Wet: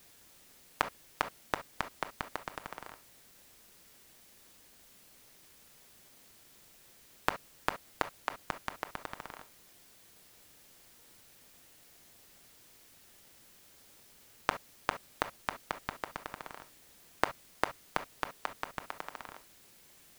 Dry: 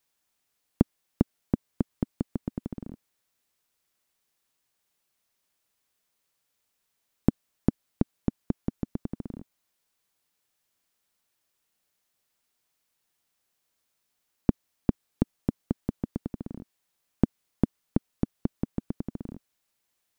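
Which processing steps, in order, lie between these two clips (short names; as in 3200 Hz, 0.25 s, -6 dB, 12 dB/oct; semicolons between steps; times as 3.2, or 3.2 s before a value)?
HPF 1000 Hz 24 dB/oct; reverb, pre-delay 7 ms, DRR 8 dB; in parallel at -9 dB: sample-rate reducer 1400 Hz, jitter 0%; on the sum: gain +17.5 dB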